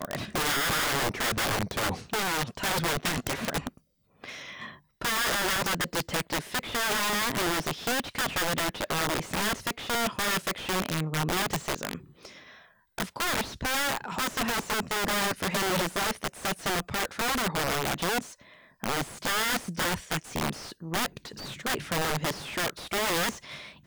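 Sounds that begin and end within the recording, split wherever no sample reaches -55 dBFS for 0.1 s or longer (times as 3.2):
4.16–4.81
5.01–12.79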